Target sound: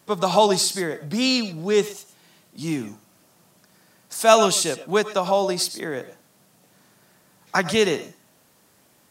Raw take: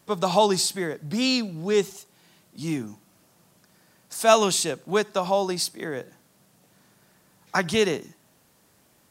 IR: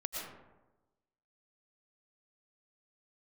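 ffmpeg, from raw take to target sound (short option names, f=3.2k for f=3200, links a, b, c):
-filter_complex "[0:a]lowshelf=f=68:g=-10.5,asplit=2[a][b];[1:a]atrim=start_sample=2205,afade=t=out:st=0.17:d=0.01,atrim=end_sample=7938[c];[b][c]afir=irnorm=-1:irlink=0,volume=-3dB[d];[a][d]amix=inputs=2:normalize=0,volume=-1dB"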